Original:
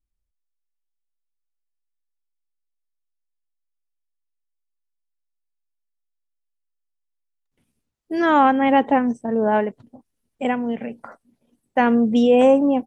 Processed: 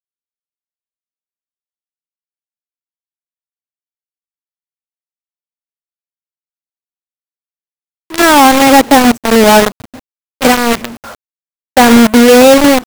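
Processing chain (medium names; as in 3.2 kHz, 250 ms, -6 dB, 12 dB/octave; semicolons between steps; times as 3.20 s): peaking EQ 84 Hz +10.5 dB 0.26 oct; in parallel at -0.5 dB: gain riding within 3 dB 0.5 s; on the sum: companded quantiser 2-bit; trim -1 dB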